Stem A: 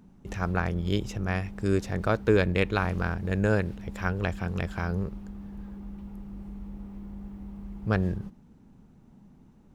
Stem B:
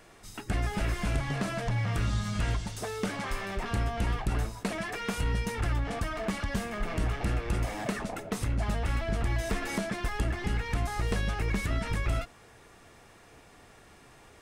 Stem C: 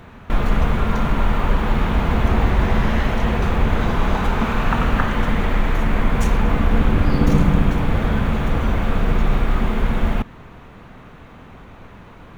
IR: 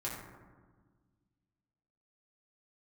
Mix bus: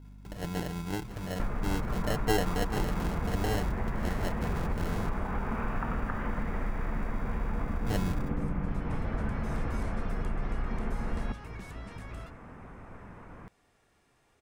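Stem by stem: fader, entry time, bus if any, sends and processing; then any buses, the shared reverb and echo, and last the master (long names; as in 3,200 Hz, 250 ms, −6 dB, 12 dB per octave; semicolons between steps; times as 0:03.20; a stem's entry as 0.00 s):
−8.0 dB, 0.00 s, no send, comb filter 6.6 ms, depth 67%; decimation without filtering 37×; mains hum 50 Hz, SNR 12 dB
−14.0 dB, 0.05 s, no send, automatic ducking −13 dB, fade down 0.30 s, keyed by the first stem
−6.0 dB, 1.10 s, no send, low-pass filter 2,200 Hz 24 dB per octave; downward compressor, threshold −22 dBFS, peak gain reduction 12.5 dB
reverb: not used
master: no processing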